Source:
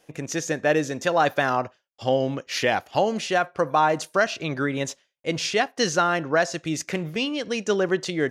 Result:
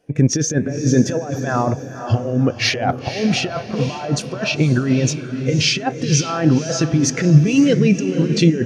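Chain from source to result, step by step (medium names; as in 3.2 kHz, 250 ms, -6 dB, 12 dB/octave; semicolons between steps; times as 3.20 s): bass shelf 200 Hz +7 dB; in parallel at -1 dB: peak limiter -19.5 dBFS, peak gain reduction 11 dB; on the sum: compressor with a negative ratio -22 dBFS, ratio -0.5; on a send: echo that smears into a reverb 498 ms, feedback 52%, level -6 dB; on the sum: speed mistake 25 fps video run at 24 fps; spectral contrast expander 1.5:1; trim +4.5 dB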